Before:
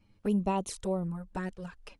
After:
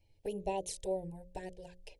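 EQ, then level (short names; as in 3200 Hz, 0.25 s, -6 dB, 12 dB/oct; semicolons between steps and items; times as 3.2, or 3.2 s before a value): Butterworth band-stop 1200 Hz, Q 2.1; notches 60/120/180/240/300/360/420/480/540/600 Hz; fixed phaser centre 550 Hz, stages 4; -1.0 dB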